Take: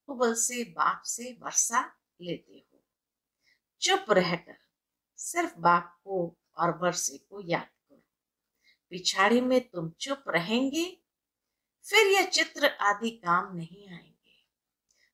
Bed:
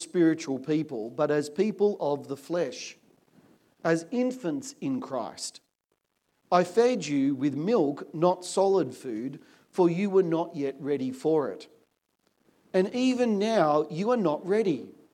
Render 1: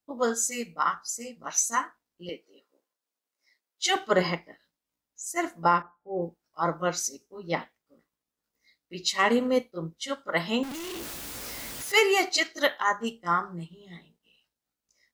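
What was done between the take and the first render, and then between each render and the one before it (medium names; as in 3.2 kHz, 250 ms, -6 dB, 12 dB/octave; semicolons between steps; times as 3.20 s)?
2.29–3.96 s: high-pass 380 Hz; 5.82–6.22 s: low-pass 1.1 kHz; 10.63–11.92 s: one-bit comparator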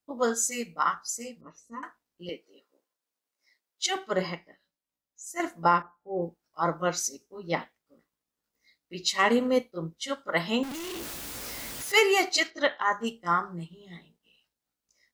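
1.41–1.83 s: boxcar filter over 57 samples; 3.86–5.40 s: feedback comb 190 Hz, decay 0.2 s; 12.50–12.92 s: distance through air 150 m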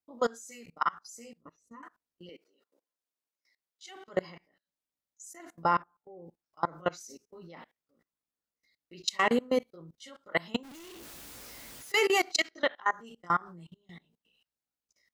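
level held to a coarse grid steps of 24 dB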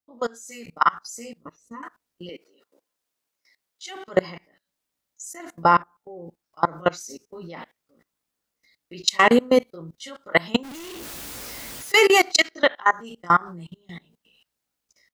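level rider gain up to 11 dB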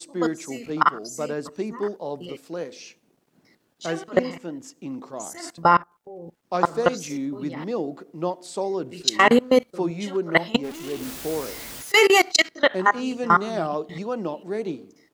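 add bed -3.5 dB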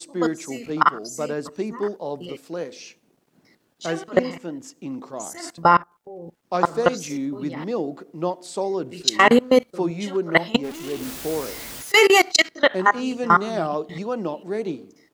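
trim +1.5 dB; peak limiter -2 dBFS, peak gain reduction 1 dB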